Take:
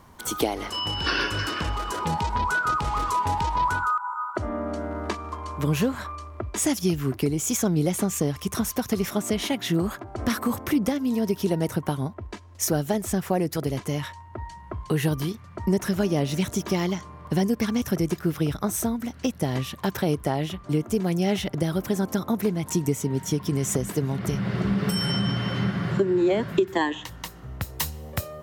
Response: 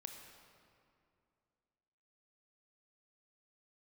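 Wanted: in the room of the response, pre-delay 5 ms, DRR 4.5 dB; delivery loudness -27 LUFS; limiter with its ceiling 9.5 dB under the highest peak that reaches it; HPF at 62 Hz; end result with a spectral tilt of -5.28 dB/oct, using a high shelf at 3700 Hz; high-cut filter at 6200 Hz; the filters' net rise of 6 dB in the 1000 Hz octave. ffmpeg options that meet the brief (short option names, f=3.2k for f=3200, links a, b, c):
-filter_complex "[0:a]highpass=62,lowpass=6.2k,equalizer=f=1k:t=o:g=7.5,highshelf=f=3.7k:g=-6,alimiter=limit=-16dB:level=0:latency=1,asplit=2[a][b];[1:a]atrim=start_sample=2205,adelay=5[c];[b][c]afir=irnorm=-1:irlink=0,volume=-0.5dB[d];[a][d]amix=inputs=2:normalize=0,volume=-1.5dB"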